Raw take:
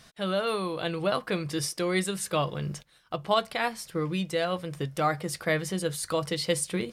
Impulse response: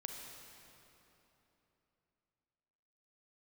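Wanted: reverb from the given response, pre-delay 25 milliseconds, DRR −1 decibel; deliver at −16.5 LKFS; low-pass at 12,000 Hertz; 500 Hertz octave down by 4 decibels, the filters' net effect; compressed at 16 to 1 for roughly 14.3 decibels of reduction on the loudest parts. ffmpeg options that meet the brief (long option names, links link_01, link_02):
-filter_complex "[0:a]lowpass=12000,equalizer=frequency=500:width_type=o:gain=-5,acompressor=threshold=-36dB:ratio=16,asplit=2[link_01][link_02];[1:a]atrim=start_sample=2205,adelay=25[link_03];[link_02][link_03]afir=irnorm=-1:irlink=0,volume=3dB[link_04];[link_01][link_04]amix=inputs=2:normalize=0,volume=20.5dB"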